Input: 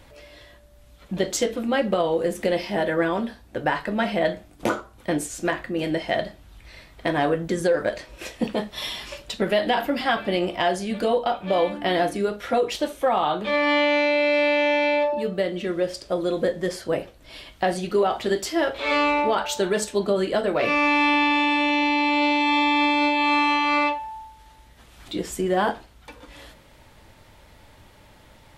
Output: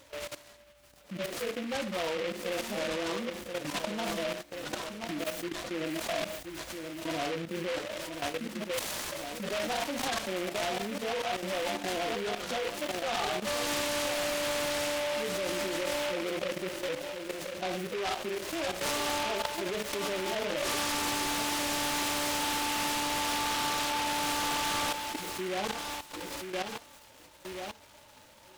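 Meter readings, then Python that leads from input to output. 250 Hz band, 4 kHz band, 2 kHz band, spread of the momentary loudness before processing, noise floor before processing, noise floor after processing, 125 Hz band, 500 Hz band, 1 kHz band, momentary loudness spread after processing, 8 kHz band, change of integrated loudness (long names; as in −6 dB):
−12.0 dB, −3.5 dB, −9.5 dB, 10 LU, −52 dBFS, −56 dBFS, −9.5 dB, −10.5 dB, −10.0 dB, 9 LU, +2.0 dB, −9.5 dB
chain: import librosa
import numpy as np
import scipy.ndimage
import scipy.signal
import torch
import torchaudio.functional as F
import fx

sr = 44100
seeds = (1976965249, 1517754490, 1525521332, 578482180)

p1 = fx.hpss_only(x, sr, part='harmonic')
p2 = np.clip(10.0 ** (16.5 / 20.0) * p1, -1.0, 1.0) / 10.0 ** (16.5 / 20.0)
p3 = p2 + fx.echo_feedback(p2, sr, ms=1028, feedback_pct=22, wet_db=-10.0, dry=0)
p4 = fx.level_steps(p3, sr, step_db=16)
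p5 = fx.echo_wet_highpass(p4, sr, ms=641, feedback_pct=35, hz=4600.0, wet_db=-10.5)
p6 = fx.over_compress(p5, sr, threshold_db=-42.0, ratio=-1.0)
p7 = p5 + F.gain(torch.from_numpy(p6), 1.5).numpy()
p8 = fx.highpass(p7, sr, hz=440.0, slope=6)
y = fx.noise_mod_delay(p8, sr, seeds[0], noise_hz=2000.0, depth_ms=0.14)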